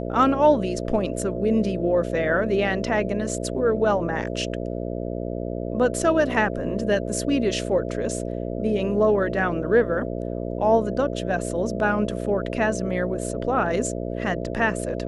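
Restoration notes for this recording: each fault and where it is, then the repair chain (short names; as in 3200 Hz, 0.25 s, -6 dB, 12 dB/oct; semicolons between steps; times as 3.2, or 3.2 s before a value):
buzz 60 Hz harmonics 11 -29 dBFS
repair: de-hum 60 Hz, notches 11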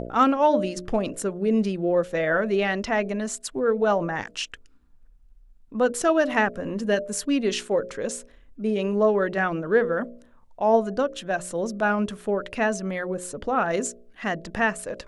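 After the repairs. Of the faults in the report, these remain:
none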